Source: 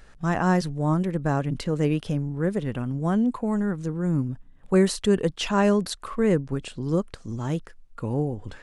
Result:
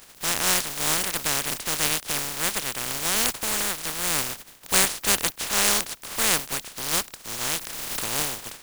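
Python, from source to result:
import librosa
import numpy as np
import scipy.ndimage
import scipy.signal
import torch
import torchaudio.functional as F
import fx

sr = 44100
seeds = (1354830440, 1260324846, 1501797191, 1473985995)

y = fx.spec_flatten(x, sr, power=0.12)
y = fx.pre_swell(y, sr, db_per_s=23.0, at=(7.4, 8.03), fade=0.02)
y = y * librosa.db_to_amplitude(-1.0)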